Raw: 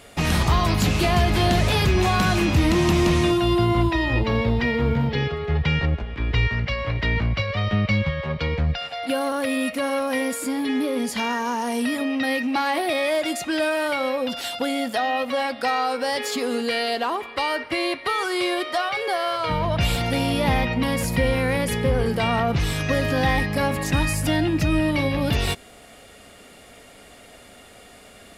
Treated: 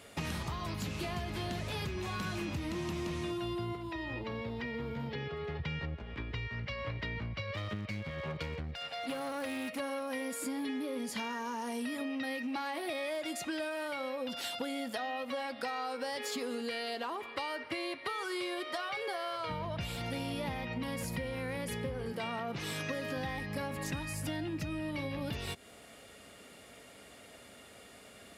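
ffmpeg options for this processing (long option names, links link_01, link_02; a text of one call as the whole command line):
ffmpeg -i in.wav -filter_complex "[0:a]asettb=1/sr,asplit=3[link_01][link_02][link_03];[link_01]atrim=end=3.754[link_04];[link_02]atrim=start=3.75:end=5.6,asetpts=PTS-STARTPTS,afade=type=in:duration=0.004:curve=qsin,afade=type=out:start_time=1.846:duration=0.004:curve=qsin,acrossover=split=200|3400[link_05][link_06][link_07];[link_05]acompressor=threshold=-34dB:ratio=4[link_08];[link_06]acompressor=threshold=-30dB:ratio=4[link_09];[link_07]acompressor=threshold=-50dB:ratio=4[link_10];[link_08][link_09][link_10]amix=inputs=3:normalize=0[link_11];[link_03]atrim=start=5.596[link_12];[link_04][link_11]acrossfade=duration=0.004:curve1=hsin:curve2=qsin[link_13];[link_13][link_12]acrossfade=duration=0.004:curve1=qsin:curve2=hsin,asettb=1/sr,asplit=3[link_14][link_15][link_16];[link_14]atrim=end=7.544[link_17];[link_15]atrim=start=7.54:end=9.8,asetpts=PTS-STARTPTS,afade=type=in:duration=0.004:curve=qsin,afade=type=out:start_time=2.256:duration=0.004:curve=qsin,aeval=exprs='clip(val(0),-1,0.0447)':channel_layout=same[link_18];[link_16]atrim=start=9.796[link_19];[link_17][link_18]acrossfade=duration=0.004:curve1=hsin:curve2=qsin[link_20];[link_20][link_19]acrossfade=duration=0.004:curve1=qsin:curve2=hsin,asettb=1/sr,asplit=3[link_21][link_22][link_23];[link_21]atrim=end=22.124[link_24];[link_22]atrim=start=22.12:end=23.16,asetpts=PTS-STARTPTS,afade=type=in:duration=0.004:curve=qsin,afade=type=out:start_time=1.036:duration=0.004:curve=qsin,highpass=180[link_25];[link_23]atrim=start=23.156[link_26];[link_24][link_25]acrossfade=duration=0.004:curve1=hsin:curve2=qsin[link_27];[link_27][link_26]acrossfade=duration=0.004:curve1=qsin:curve2=hsin,bandreject=frequency=730:width=17,acompressor=threshold=-27dB:ratio=6,highpass=71,volume=-7dB" out.wav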